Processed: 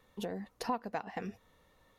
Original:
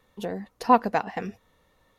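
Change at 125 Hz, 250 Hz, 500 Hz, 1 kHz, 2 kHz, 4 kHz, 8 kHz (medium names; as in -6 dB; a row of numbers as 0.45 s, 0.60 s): -8.0 dB, -11.5 dB, -12.0 dB, -15.5 dB, -11.5 dB, -5.0 dB, no reading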